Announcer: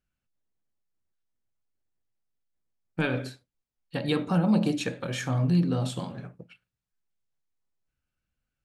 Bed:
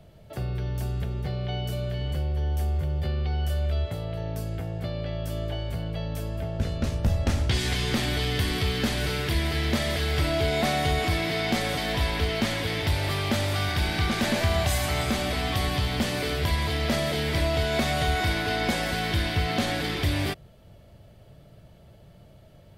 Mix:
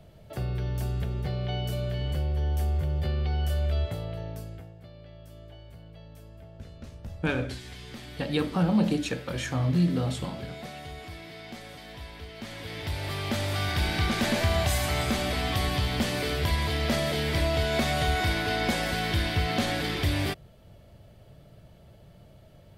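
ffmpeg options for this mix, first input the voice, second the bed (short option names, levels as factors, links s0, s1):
-filter_complex "[0:a]adelay=4250,volume=0.944[s0];[1:a]volume=5.62,afade=t=out:st=3.85:d=0.9:silence=0.158489,afade=t=in:st=12.34:d=1.48:silence=0.16788[s1];[s0][s1]amix=inputs=2:normalize=0"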